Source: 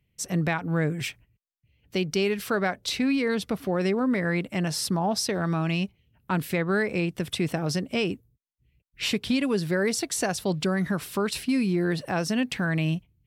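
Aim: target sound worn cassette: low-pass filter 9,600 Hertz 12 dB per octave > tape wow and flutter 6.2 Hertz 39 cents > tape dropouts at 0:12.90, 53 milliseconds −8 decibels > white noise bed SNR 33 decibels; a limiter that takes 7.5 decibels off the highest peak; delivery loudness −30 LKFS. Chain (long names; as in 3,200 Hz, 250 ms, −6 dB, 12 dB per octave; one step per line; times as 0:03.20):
brickwall limiter −21.5 dBFS
low-pass filter 9,600 Hz 12 dB per octave
tape wow and flutter 6.2 Hz 39 cents
tape dropouts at 0:12.90, 53 ms −8 dB
white noise bed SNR 33 dB
level +0.5 dB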